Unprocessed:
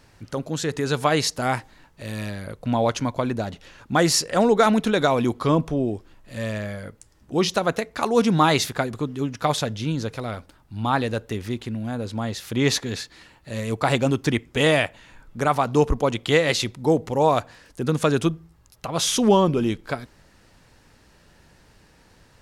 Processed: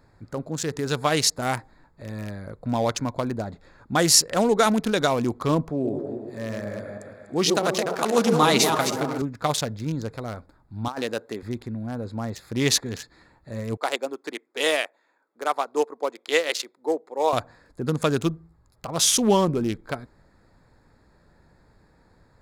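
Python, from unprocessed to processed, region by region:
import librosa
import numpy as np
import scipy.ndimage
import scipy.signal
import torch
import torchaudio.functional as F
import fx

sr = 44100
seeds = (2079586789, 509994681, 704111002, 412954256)

y = fx.chain(x, sr, fx.reverse_delay_fb(ms=161, feedback_pct=48, wet_db=-5.0),
    fx.highpass(hz=130.0, slope=12),
    fx.echo_stepped(ms=121, hz=400.0, octaves=0.7, feedback_pct=70, wet_db=-3.5), at=(5.69, 9.22))
y = fx.chain(y, sr, fx.highpass(hz=280.0, slope=12),
    fx.over_compress(threshold_db=-25.0, ratio=-0.5), at=(10.88, 11.43))
y = fx.chain(y, sr, fx.highpass(hz=340.0, slope=24),
    fx.upward_expand(threshold_db=-34.0, expansion=1.5), at=(13.77, 17.33))
y = fx.wiener(y, sr, points=15)
y = fx.high_shelf(y, sr, hz=4000.0, db=11.5)
y = F.gain(torch.from_numpy(y), -2.5).numpy()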